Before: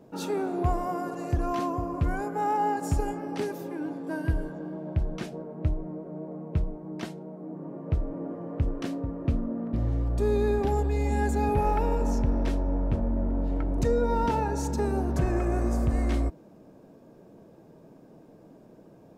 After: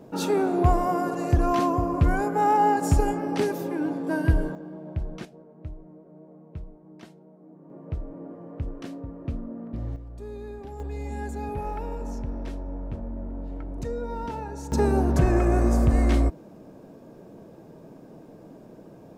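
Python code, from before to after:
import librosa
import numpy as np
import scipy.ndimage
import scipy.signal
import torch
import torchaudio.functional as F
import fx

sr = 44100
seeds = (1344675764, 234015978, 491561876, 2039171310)

y = fx.gain(x, sr, db=fx.steps((0.0, 6.0), (4.55, -3.0), (5.25, -11.0), (7.7, -5.0), (9.96, -13.5), (10.8, -7.0), (14.72, 5.5)))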